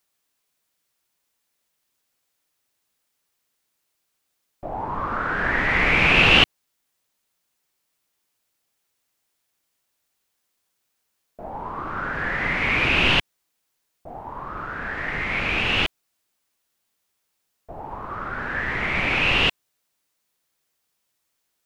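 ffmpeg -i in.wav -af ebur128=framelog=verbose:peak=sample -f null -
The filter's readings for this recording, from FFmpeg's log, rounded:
Integrated loudness:
  I:         -20.2 LUFS
  Threshold: -31.6 LUFS
Loudness range:
  LRA:        12.9 LU
  Threshold: -44.0 LUFS
  LRA low:   -32.6 LUFS
  LRA high:  -19.7 LUFS
Sample peak:
  Peak:       -1.6 dBFS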